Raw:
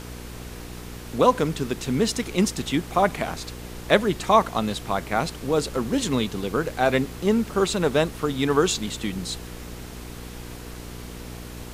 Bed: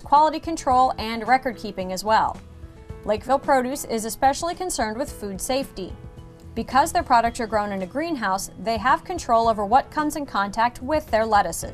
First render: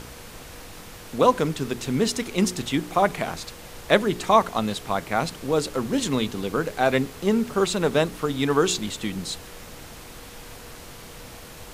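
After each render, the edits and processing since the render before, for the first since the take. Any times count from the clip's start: de-hum 60 Hz, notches 7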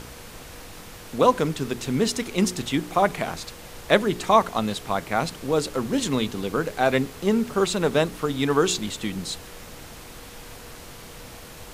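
no audible change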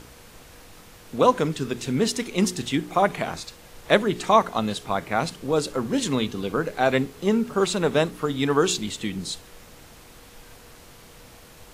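noise print and reduce 6 dB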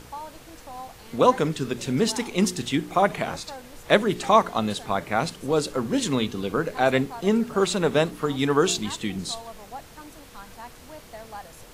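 add bed -21.5 dB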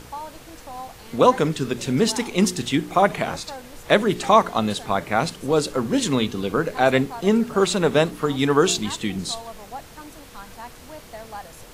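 trim +3 dB; peak limiter -3 dBFS, peak gain reduction 2.5 dB

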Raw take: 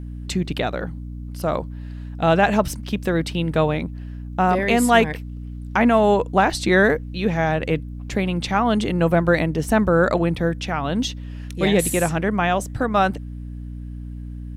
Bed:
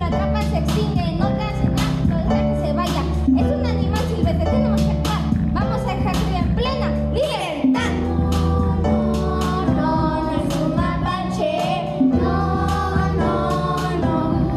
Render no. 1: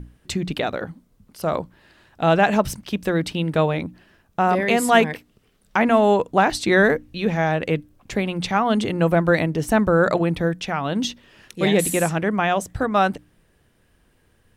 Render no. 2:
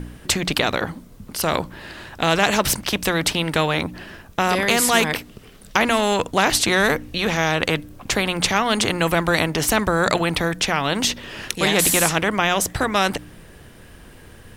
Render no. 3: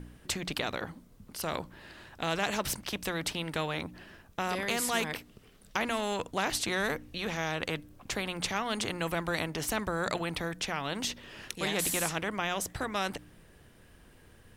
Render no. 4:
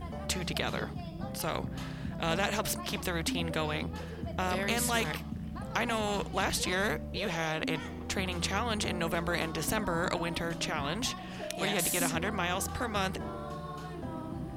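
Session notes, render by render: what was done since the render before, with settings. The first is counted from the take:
hum notches 60/120/180/240/300 Hz
spectrum-flattening compressor 2:1
trim -13 dB
add bed -20 dB

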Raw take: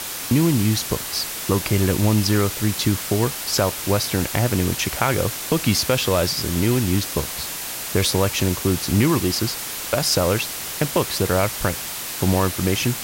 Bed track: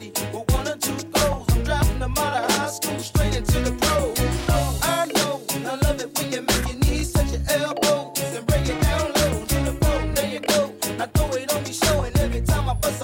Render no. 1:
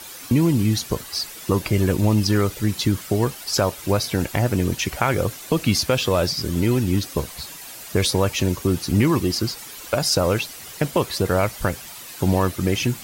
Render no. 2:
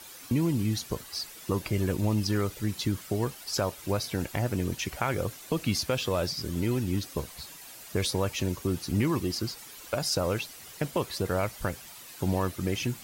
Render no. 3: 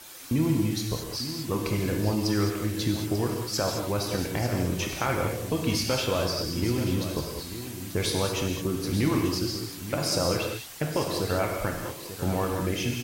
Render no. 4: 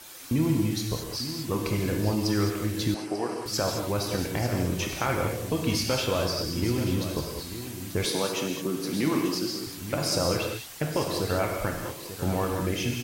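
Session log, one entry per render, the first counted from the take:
noise reduction 11 dB, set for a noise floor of -30 dBFS
trim -8.5 dB
delay 891 ms -11.5 dB; gated-style reverb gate 240 ms flat, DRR 1 dB
2.94–3.46 s: cabinet simulation 300–9500 Hz, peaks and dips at 770 Hz +6 dB, 3.5 kHz -10 dB, 7 kHz -9 dB; 8.05–9.67 s: high-pass 160 Hz 24 dB/octave

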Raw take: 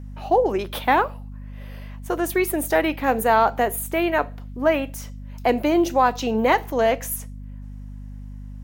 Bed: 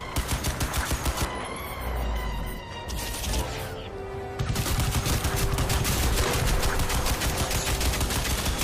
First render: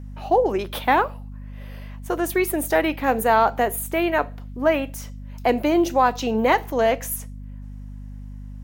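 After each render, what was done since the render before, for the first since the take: no audible change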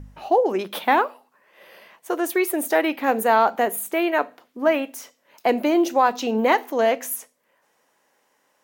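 de-hum 50 Hz, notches 5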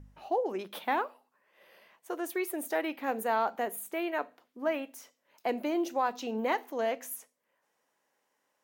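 trim -11.5 dB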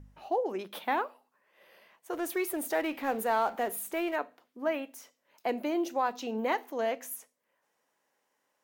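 2.13–4.16 s: companding laws mixed up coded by mu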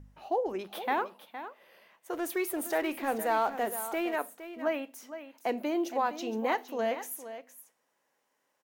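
delay 464 ms -12 dB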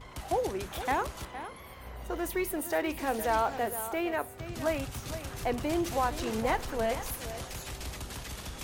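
add bed -14 dB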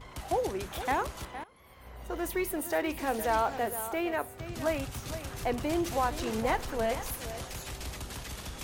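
1.44–2.24 s: fade in, from -19 dB

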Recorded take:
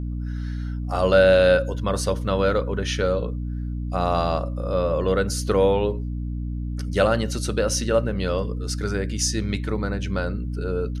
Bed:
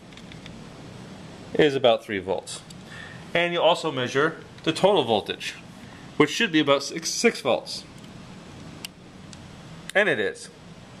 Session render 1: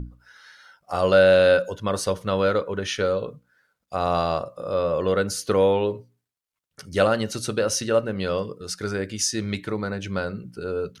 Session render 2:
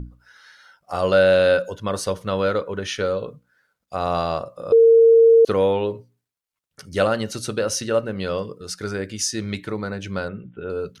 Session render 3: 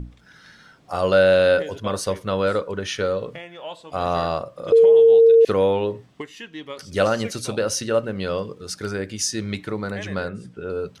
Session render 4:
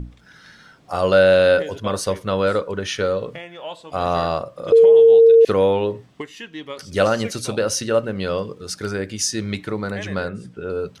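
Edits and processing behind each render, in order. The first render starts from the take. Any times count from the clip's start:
hum notches 60/120/180/240/300 Hz
4.72–5.45 s: bleep 457 Hz -8.5 dBFS; 10.28–10.70 s: Chebyshev low-pass 3.7 kHz, order 10
add bed -15.5 dB
trim +2 dB

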